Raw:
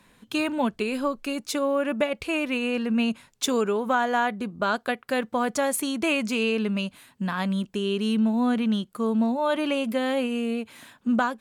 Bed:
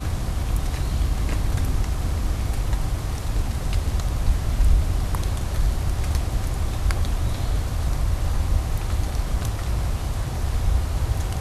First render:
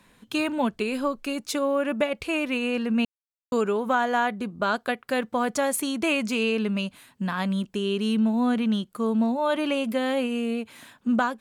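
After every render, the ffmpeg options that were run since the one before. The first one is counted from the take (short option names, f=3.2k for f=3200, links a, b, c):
-filter_complex "[0:a]asplit=3[a][b][c];[a]atrim=end=3.05,asetpts=PTS-STARTPTS,afade=t=out:st=3.046:d=0.004:c=hsin[d];[b]atrim=start=3.05:end=3.52,asetpts=PTS-STARTPTS,volume=0[e];[c]atrim=start=3.52,asetpts=PTS-STARTPTS,afade=t=in:d=0.004:c=hsin[f];[d][e][f]concat=n=3:v=0:a=1"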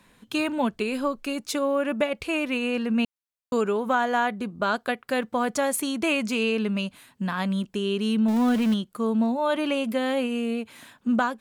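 -filter_complex "[0:a]asettb=1/sr,asplit=3[a][b][c];[a]atrim=end=8.284[d];[b]atrim=start=8.28:end=8.74,asetpts=PTS-STARTPTS,afade=t=in:d=0.004:c=qsin,afade=t=out:st=0.456:d=0.004:c=qsin,aeval=exprs='val(0)+0.5*0.0376*sgn(val(0))':c=same[e];[c]atrim=start=8.736[f];[d][e]acrossfade=d=0.004:c1=hsin:c2=qsin[g];[g][f]acrossfade=d=0.004:c1=qsin:c2=hsin"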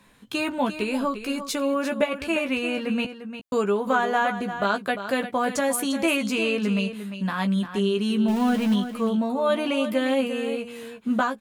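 -filter_complex "[0:a]asplit=2[a][b];[b]adelay=15,volume=-6dB[c];[a][c]amix=inputs=2:normalize=0,aecho=1:1:349:0.299"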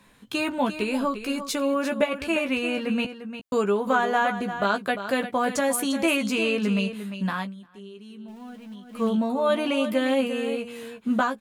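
-filter_complex "[0:a]asplit=3[a][b][c];[a]atrim=end=7.57,asetpts=PTS-STARTPTS,afade=t=out:st=7.36:d=0.21:c=qua:silence=0.105925[d];[b]atrim=start=7.57:end=8.81,asetpts=PTS-STARTPTS,volume=-19.5dB[e];[c]atrim=start=8.81,asetpts=PTS-STARTPTS,afade=t=in:d=0.21:c=qua:silence=0.105925[f];[d][e][f]concat=n=3:v=0:a=1"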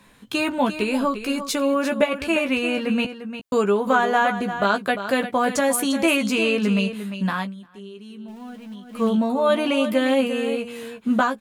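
-af "volume=3.5dB"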